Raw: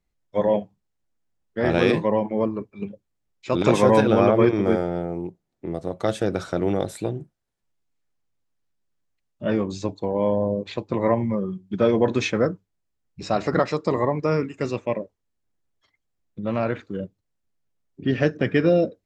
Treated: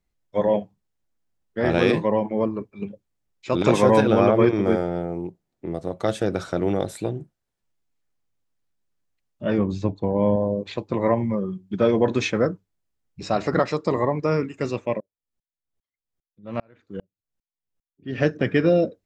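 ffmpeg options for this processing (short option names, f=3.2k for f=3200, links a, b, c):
-filter_complex "[0:a]asettb=1/sr,asplit=3[a][b][c];[a]atrim=end=9.584[d];[b]atrim=start=9.58:end=10.36,asetpts=PTS-STARTPTS,afade=t=in:d=0.004:c=qsin,afade=t=out:st=0.776:d=0.004:c=qsin,bass=f=250:g=7,treble=f=4k:g=-11[e];[c]atrim=start=10.356[f];[d][e]acrossfade=d=0.004:c1=hsin:c2=qsin[g];[g][f]acrossfade=d=0.004:c1=qsin:c2=hsin,asettb=1/sr,asplit=3[h][i][j];[h]atrim=end=15.004[k];[i]atrim=start=15:end=18.19,asetpts=PTS-STARTPTS,afade=t=in:d=0.004:c=qsin,afade=t=out:st=3.186:d=0.004:c=qsin,aeval=exprs='val(0)*pow(10,-38*if(lt(mod(-2.5*n/s,1),2*abs(-2.5)/1000),1-mod(-2.5*n/s,1)/(2*abs(-2.5)/1000),(mod(-2.5*n/s,1)-2*abs(-2.5)/1000)/(1-2*abs(-2.5)/1000))/20)':c=same[l];[j]atrim=start=18.186[m];[k][l]acrossfade=d=0.004:c1=hsin:c2=qsin[n];[n][m]acrossfade=d=0.004:c1=qsin:c2=hsin"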